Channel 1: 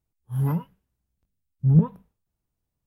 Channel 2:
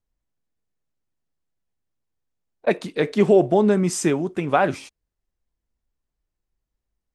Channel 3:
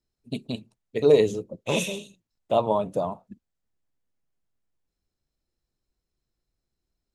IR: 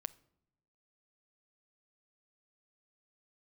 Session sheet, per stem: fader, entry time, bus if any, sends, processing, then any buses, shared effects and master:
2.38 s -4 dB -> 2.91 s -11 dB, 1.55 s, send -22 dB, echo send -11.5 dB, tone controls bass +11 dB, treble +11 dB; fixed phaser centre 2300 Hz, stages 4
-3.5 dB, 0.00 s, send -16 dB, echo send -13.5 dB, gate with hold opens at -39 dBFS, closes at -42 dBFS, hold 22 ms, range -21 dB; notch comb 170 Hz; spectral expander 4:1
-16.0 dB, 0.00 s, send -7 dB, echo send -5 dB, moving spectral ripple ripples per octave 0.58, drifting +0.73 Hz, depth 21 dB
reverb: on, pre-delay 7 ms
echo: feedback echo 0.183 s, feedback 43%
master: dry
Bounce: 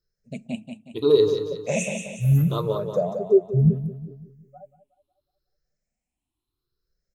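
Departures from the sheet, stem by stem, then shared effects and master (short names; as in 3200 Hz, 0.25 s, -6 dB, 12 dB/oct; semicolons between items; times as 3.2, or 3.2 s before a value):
stem 1: entry 1.55 s -> 1.90 s; stem 3 -16.0 dB -> -8.0 dB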